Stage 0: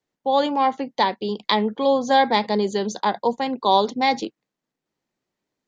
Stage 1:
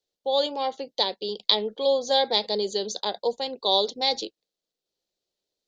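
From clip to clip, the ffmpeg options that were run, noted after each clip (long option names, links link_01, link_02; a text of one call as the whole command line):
ffmpeg -i in.wav -af "equalizer=frequency=125:width_type=o:width=1:gain=-11,equalizer=frequency=250:width_type=o:width=1:gain=-11,equalizer=frequency=500:width_type=o:width=1:gain=5,equalizer=frequency=1000:width_type=o:width=1:gain=-10,equalizer=frequency=2000:width_type=o:width=1:gain=-10,equalizer=frequency=4000:width_type=o:width=1:gain=10,volume=-2dB" out.wav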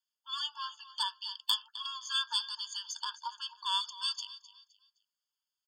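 ffmpeg -i in.wav -af "aecho=1:1:259|518|777:0.158|0.0475|0.0143,aeval=exprs='(tanh(2.51*val(0)+0.5)-tanh(0.5))/2.51':channel_layout=same,afftfilt=real='re*eq(mod(floor(b*sr/1024/890),2),1)':imag='im*eq(mod(floor(b*sr/1024/890),2),1)':win_size=1024:overlap=0.75" out.wav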